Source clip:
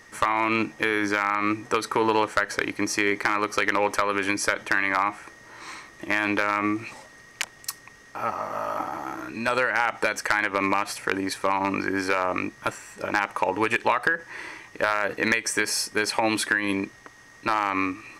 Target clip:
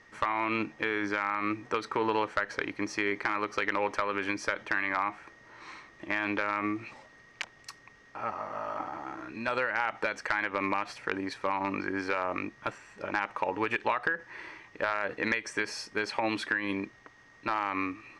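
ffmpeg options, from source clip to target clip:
ffmpeg -i in.wav -af "lowpass=4300,volume=-6.5dB" out.wav

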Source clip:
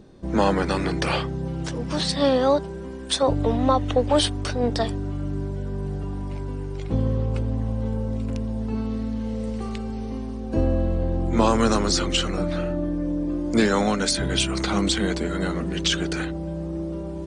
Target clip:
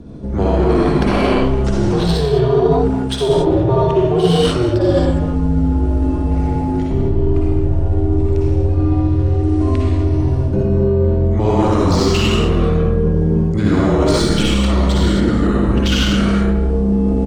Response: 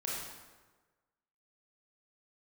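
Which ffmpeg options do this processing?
-filter_complex "[1:a]atrim=start_sample=2205,afade=type=out:start_time=0.2:duration=0.01,atrim=end_sample=9261,asetrate=23373,aresample=44100[link_01];[0:a][link_01]afir=irnorm=-1:irlink=0,asplit=2[link_02][link_03];[link_03]adynamicsmooth=sensitivity=1.5:basefreq=2200,volume=-1dB[link_04];[link_02][link_04]amix=inputs=2:normalize=0,equalizer=frequency=440:width=0.88:gain=8.5,afreqshift=-130,areverse,acompressor=threshold=-12dB:ratio=10,areverse,asplit=2[link_05][link_06];[link_06]adelay=210,highpass=300,lowpass=3400,asoftclip=type=hard:threshold=-15.5dB,volume=-12dB[link_07];[link_05][link_07]amix=inputs=2:normalize=0,volume=1.5dB"

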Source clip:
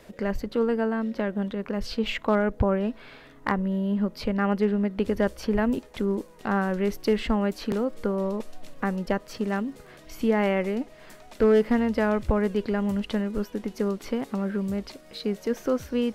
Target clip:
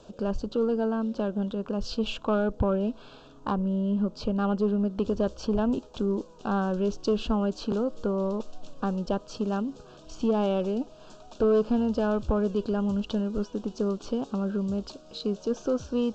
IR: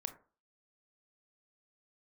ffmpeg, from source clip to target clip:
-filter_complex "[0:a]asettb=1/sr,asplit=3[link_01][link_02][link_03];[link_01]atrim=end=3.514[link_04];[link_02]atrim=start=3.51:end=4.79,asetpts=PTS-STARTPTS,afade=type=in:duration=0.004:curve=qsin,afade=type=out:start_time=1.276:duration=0.004:curve=qsin,highshelf=frequency=3200:gain=-3[link_05];[link_03]atrim=start=4.786[link_06];[link_04][link_05]acrossfade=duration=0.004:curve1=hsin:curve2=qsin[link_07];[link_07][link_06]acrossfade=duration=0.004:curve1=qsin:curve2=hsin,asoftclip=type=tanh:threshold=-16.5dB,asuperstop=centerf=2000:order=4:qfactor=1.5" -ar 16000 -c:a g722

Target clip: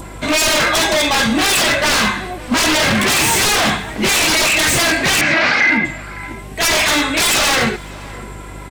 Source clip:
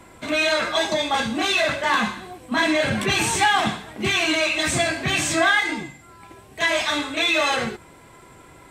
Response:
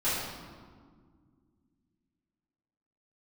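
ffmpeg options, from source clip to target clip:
-filter_complex "[0:a]adynamicequalizer=threshold=0.02:dfrequency=2000:dqfactor=1.8:tfrequency=2000:tqfactor=1.8:attack=5:release=100:ratio=0.375:range=2.5:mode=boostabove:tftype=bell,acompressor=mode=upward:threshold=-40dB:ratio=2.5,aeval=exprs='val(0)+0.00631*(sin(2*PI*50*n/s)+sin(2*PI*2*50*n/s)/2+sin(2*PI*3*50*n/s)/3+sin(2*PI*4*50*n/s)/4+sin(2*PI*5*50*n/s)/5)':channel_layout=same,aeval=exprs='0.1*(abs(mod(val(0)/0.1+3,4)-2)-1)':channel_layout=same,asettb=1/sr,asplit=3[link_01][link_02][link_03];[link_01]atrim=end=5.214[link_04];[link_02]atrim=start=5.21:end=5.85,asetpts=PTS-STARTPTS,afade=type=in:duration=0.004:curve=qsin,afade=type=out:start_time=0.636:duration=0.004:curve=qsin,highpass=110,equalizer=frequency=240:width_type=q:width=4:gain=8,equalizer=frequency=400:width_type=q:width=4:gain=-8,equalizer=frequency=580:width_type=q:width=4:gain=7,equalizer=frequency=1500:width_type=q:width=4:gain=8,equalizer=frequency=2200:width_type=q:width=4:gain=8,equalizer=frequency=3400:width_type=q:width=4:gain=-7,lowpass=frequency=4300:width=0.5412,lowpass=frequency=4300:width=1.3066[link_05];[link_03]atrim=start=5.846[link_06];[link_04][link_05]acrossfade=duration=0.004:curve1=hsin:curve2=qsin[link_07];[link_07][link_06]acrossfade=duration=0.004:curve1=qsin:curve2=hsin,asplit=2[link_08][link_09];[link_09]adelay=559.8,volume=-19dB,highshelf=frequency=4000:gain=-12.6[link_10];[link_08][link_10]amix=inputs=2:normalize=0,alimiter=level_in=15dB:limit=-1dB:release=50:level=0:latency=1,volume=-4.5dB"

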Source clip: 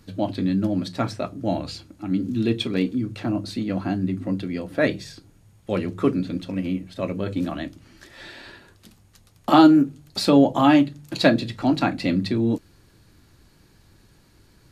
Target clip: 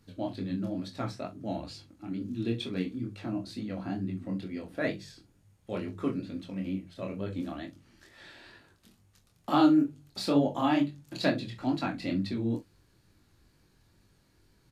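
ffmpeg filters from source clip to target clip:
ffmpeg -i in.wav -filter_complex "[0:a]flanger=delay=19.5:depth=6.8:speed=2.2,asplit=2[link_01][link_02];[link_02]adelay=42,volume=-13dB[link_03];[link_01][link_03]amix=inputs=2:normalize=0,volume=-7dB" out.wav

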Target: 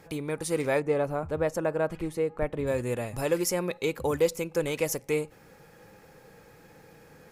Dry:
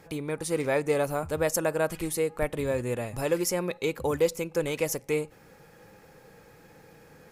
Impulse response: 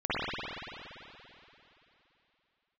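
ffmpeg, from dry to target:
-filter_complex "[0:a]asplit=3[link_01][link_02][link_03];[link_01]afade=type=out:start_time=0.79:duration=0.02[link_04];[link_02]lowpass=frequency=1400:poles=1,afade=type=in:start_time=0.79:duration=0.02,afade=type=out:start_time=2.66:duration=0.02[link_05];[link_03]afade=type=in:start_time=2.66:duration=0.02[link_06];[link_04][link_05][link_06]amix=inputs=3:normalize=0"

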